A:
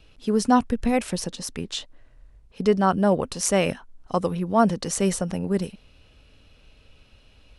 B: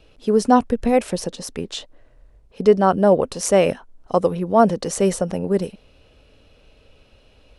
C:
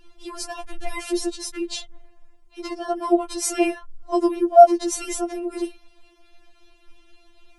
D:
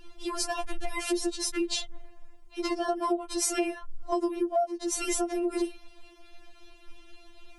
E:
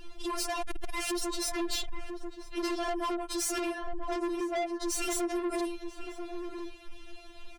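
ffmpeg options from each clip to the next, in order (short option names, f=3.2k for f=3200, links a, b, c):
-af "equalizer=f=510:t=o:w=1.5:g=8"
-filter_complex "[0:a]acrossover=split=730|4800[a][b][c];[b]alimiter=limit=-19.5dB:level=0:latency=1:release=10[d];[a][d][c]amix=inputs=3:normalize=0,afftfilt=real='re*4*eq(mod(b,16),0)':imag='im*4*eq(mod(b,16),0)':win_size=2048:overlap=0.75,volume=3dB"
-af "acompressor=threshold=-27dB:ratio=12,volume=2.5dB"
-filter_complex "[0:a]asoftclip=type=tanh:threshold=-33.5dB,asplit=2[a][b];[b]adelay=991.3,volume=-7dB,highshelf=f=4k:g=-22.3[c];[a][c]amix=inputs=2:normalize=0,volume=4dB"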